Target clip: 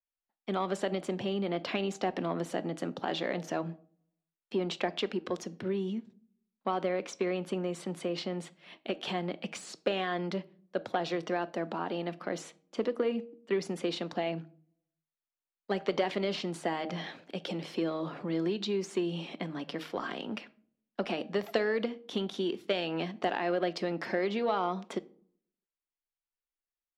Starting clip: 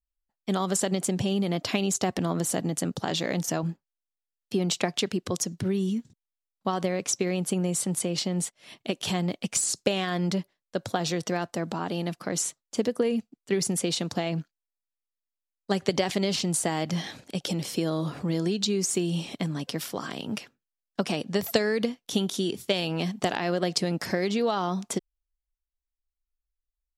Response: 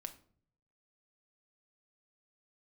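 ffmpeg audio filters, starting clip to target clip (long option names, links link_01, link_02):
-filter_complex "[0:a]asoftclip=type=tanh:threshold=-15dB,acrossover=split=220 3700:gain=0.0891 1 0.126[link_01][link_02][link_03];[link_01][link_02][link_03]amix=inputs=3:normalize=0,bandreject=frequency=156.7:width_type=h:width=4,bandreject=frequency=313.4:width_type=h:width=4,bandreject=frequency=470.1:width_type=h:width=4,bandreject=frequency=626.8:width_type=h:width=4,bandreject=frequency=783.5:width_type=h:width=4,asettb=1/sr,asplit=3[link_04][link_05][link_06];[link_04]atrim=end=19.934[link_07];[link_05]atrim=start=19.93:end=20.33,asetpts=PTS-STARTPTS,afade=type=in:duration=0.004:curve=qsin,afade=type=out:start_time=0.396:duration=0.004:curve=qsin,aeval=exprs='0.126*(cos(1*acos(clip(val(0)/0.126,-1,1)))-cos(1*PI/2))+0.00562*(cos(5*acos(clip(val(0)/0.126,-1,1)))-cos(5*PI/2))':channel_layout=same[link_08];[link_06]atrim=start=20.326[link_09];[link_07][link_08]acrossfade=duration=0.004:curve1=hsin:curve2=qsin[link_10];[link_10][link_09]acrossfade=duration=0.004:curve1=qsin:curve2=hsin,asplit=2[link_11][link_12];[1:a]atrim=start_sample=2205,lowpass=7000[link_13];[link_12][link_13]afir=irnorm=-1:irlink=0,volume=0dB[link_14];[link_11][link_14]amix=inputs=2:normalize=0,volume=-5.5dB"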